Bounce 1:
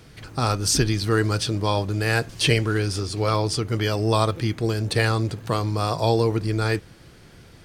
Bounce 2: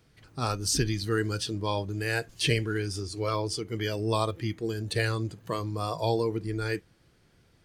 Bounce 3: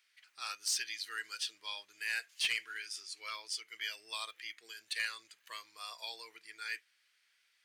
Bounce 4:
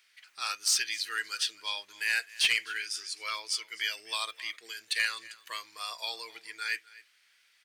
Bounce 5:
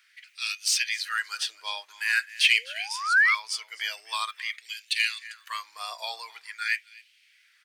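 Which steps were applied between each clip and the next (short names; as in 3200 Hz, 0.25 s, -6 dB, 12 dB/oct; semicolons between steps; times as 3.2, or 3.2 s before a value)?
spectral noise reduction 9 dB; gain -6 dB
resonant high-pass 2100 Hz, resonance Q 1.7; soft clip -19 dBFS, distortion -17 dB; gain -5 dB
echo 0.256 s -20.5 dB; gain +7.5 dB
painted sound rise, 2.49–3.35, 360–2300 Hz -25 dBFS; LFO high-pass sine 0.46 Hz 670–2700 Hz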